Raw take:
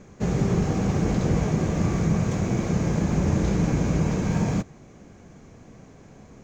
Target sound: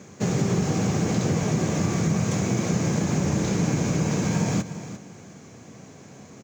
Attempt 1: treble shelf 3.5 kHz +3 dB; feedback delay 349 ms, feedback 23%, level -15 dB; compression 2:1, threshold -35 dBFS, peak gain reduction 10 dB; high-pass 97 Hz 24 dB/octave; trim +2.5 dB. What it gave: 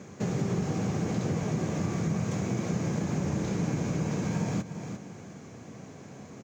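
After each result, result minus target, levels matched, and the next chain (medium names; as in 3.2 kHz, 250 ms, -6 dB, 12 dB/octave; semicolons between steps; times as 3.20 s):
compression: peak gain reduction +6 dB; 8 kHz band -4.5 dB
treble shelf 3.5 kHz +3 dB; feedback delay 349 ms, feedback 23%, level -15 dB; compression 2:1, threshold -23 dBFS, peak gain reduction 4 dB; high-pass 97 Hz 24 dB/octave; trim +2.5 dB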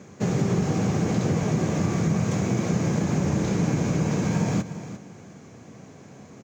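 8 kHz band -5.0 dB
treble shelf 3.5 kHz +9.5 dB; feedback delay 349 ms, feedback 23%, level -15 dB; compression 2:1, threshold -23 dBFS, peak gain reduction 4 dB; high-pass 97 Hz 24 dB/octave; trim +2.5 dB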